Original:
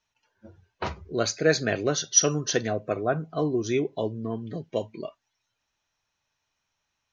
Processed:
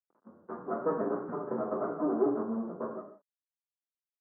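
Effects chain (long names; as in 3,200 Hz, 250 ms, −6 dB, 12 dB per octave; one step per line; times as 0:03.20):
lower of the sound and its delayed copy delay 9.9 ms
half-wave rectification
reverb whose tail is shaped and stops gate 350 ms falling, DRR −4 dB
phase-vocoder stretch with locked phases 0.59×
log-companded quantiser 6 bits
noise gate with hold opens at −48 dBFS
Butterworth low-pass 1,300 Hz 48 dB per octave
parametric band 860 Hz −6.5 dB 0.9 octaves
upward compression, threshold −44 dBFS
high-pass filter 190 Hz 24 dB per octave
level +1 dB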